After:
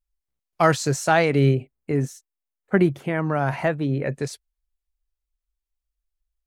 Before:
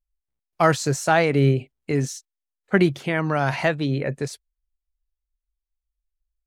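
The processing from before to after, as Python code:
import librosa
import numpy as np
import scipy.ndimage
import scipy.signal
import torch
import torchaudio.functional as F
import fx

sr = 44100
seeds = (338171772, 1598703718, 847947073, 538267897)

y = fx.peak_eq(x, sr, hz=4500.0, db=-12.0, octaves=1.8, at=(1.55, 4.03))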